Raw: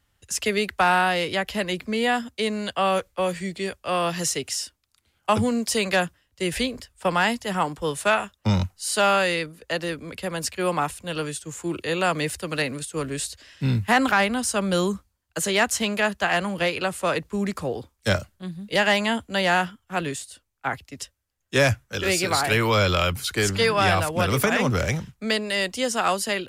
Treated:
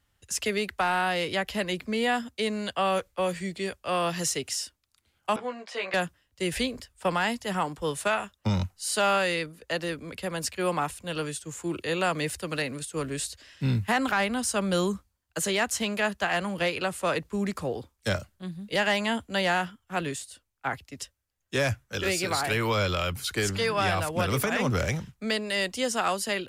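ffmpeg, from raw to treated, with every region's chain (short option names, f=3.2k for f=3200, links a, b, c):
-filter_complex "[0:a]asettb=1/sr,asplit=3[a][b][c];[a]atrim=end=5.364[d];[b]atrim=start=5.36:end=5.94,asetpts=PTS-STARTPTS,afade=t=in:d=0.004:c=qsin,afade=t=out:st=0.576:d=0.004:c=qsin,highpass=670,lowpass=2.2k,asplit=2[e][f];[f]adelay=16,volume=-2.5dB[g];[e][g]amix=inputs=2:normalize=0,atrim=end_sample=25578[h];[c]atrim=start=5.936[i];[d][h]acrossfade=d=0.004:c1=hsin:c2=qsin[j];[j][i]acrossfade=d=0.004:c1=qsin:c2=hsin,acontrast=41,alimiter=limit=-7.5dB:level=0:latency=1:release=283,volume=-8.5dB"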